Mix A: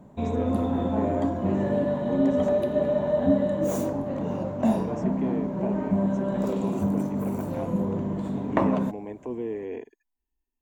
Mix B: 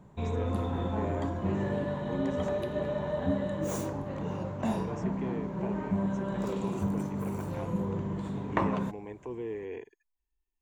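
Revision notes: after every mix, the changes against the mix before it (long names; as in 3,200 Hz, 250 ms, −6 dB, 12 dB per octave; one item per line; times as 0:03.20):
master: add graphic EQ with 15 bands 250 Hz −11 dB, 630 Hz −9 dB, 16,000 Hz −9 dB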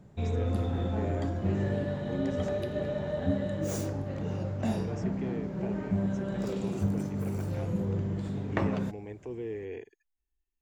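master: add thirty-one-band graphic EQ 100 Hz +7 dB, 1,000 Hz −12 dB, 5,000 Hz +7 dB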